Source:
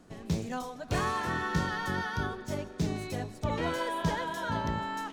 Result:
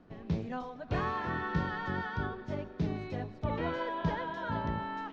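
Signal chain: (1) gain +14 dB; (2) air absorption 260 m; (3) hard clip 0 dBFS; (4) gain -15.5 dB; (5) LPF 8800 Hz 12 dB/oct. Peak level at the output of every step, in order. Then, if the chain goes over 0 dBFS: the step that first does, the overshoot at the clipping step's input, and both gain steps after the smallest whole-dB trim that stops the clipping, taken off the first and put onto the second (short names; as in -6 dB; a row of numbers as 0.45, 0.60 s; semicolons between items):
-1.5, -2.0, -2.0, -17.5, -17.5 dBFS; no overload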